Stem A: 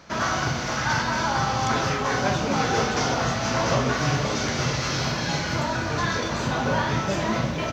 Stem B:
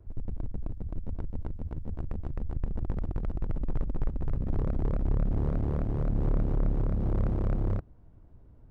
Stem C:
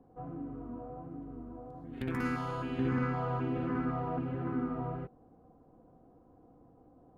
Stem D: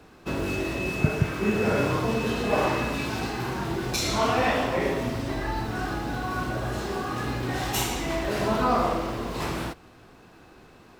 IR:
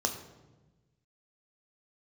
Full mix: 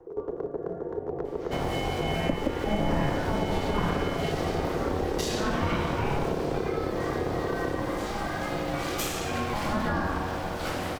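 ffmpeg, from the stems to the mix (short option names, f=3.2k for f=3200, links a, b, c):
-filter_complex "[0:a]adelay=1300,volume=-19.5dB[a];[1:a]aeval=exprs='clip(val(0),-1,0.0112)':c=same,volume=2.5dB,asplit=2[b][c];[c]volume=-7dB[d];[2:a]dynaudnorm=f=580:g=3:m=7.5dB,asplit=2[e][f];[f]afreqshift=0.88[g];[e][g]amix=inputs=2:normalize=1,volume=1.5dB[h];[3:a]adelay=1250,volume=2.5dB[i];[4:a]atrim=start_sample=2205[j];[d][j]afir=irnorm=-1:irlink=0[k];[a][b][h][i][k]amix=inputs=5:normalize=0,aeval=exprs='val(0)*sin(2*PI*420*n/s)':c=same,acrossover=split=240[l][m];[m]acompressor=threshold=-27dB:ratio=6[n];[l][n]amix=inputs=2:normalize=0"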